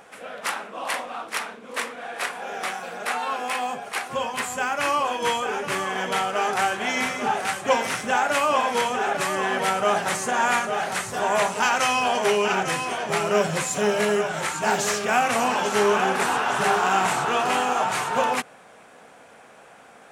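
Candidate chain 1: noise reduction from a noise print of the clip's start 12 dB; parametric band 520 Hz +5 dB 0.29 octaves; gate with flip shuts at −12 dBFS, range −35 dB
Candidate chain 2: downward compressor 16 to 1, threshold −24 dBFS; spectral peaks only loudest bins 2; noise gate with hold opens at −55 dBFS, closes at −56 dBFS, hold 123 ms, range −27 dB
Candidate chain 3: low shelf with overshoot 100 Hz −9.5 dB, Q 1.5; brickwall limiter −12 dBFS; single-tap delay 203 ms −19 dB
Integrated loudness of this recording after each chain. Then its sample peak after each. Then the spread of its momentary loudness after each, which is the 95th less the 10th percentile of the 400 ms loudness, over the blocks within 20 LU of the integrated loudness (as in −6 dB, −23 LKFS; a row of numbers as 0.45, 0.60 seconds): −28.5, −36.0, −24.0 LKFS; −9.5, −23.5, −11.0 dBFS; 10, 9, 8 LU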